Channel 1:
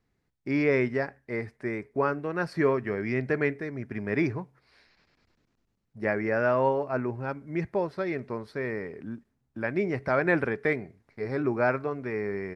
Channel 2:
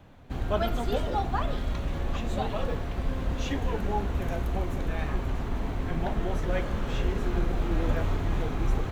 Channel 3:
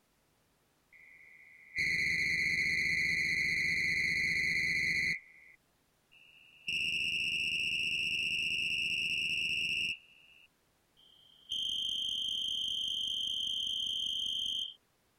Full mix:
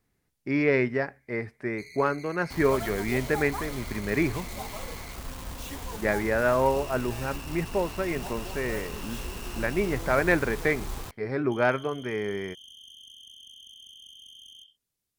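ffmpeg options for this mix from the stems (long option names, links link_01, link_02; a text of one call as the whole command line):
ffmpeg -i stem1.wav -i stem2.wav -i stem3.wav -filter_complex "[0:a]bass=frequency=250:gain=0,treble=frequency=4000:gain=-9,volume=2dB[link_01];[1:a]acrusher=bits=5:mix=0:aa=0.000001,equalizer=frequency=1000:width_type=o:width=0.64:gain=6.5,adelay=2200,volume=-8.5dB[link_02];[2:a]equalizer=frequency=950:width=0.33:gain=-10,volume=-11dB[link_03];[link_01][link_02][link_03]amix=inputs=3:normalize=0,aeval=exprs='0.355*(cos(1*acos(clip(val(0)/0.355,-1,1)))-cos(1*PI/2))+0.02*(cos(3*acos(clip(val(0)/0.355,-1,1)))-cos(3*PI/2))':channel_layout=same,highshelf=frequency=4200:gain=9.5" out.wav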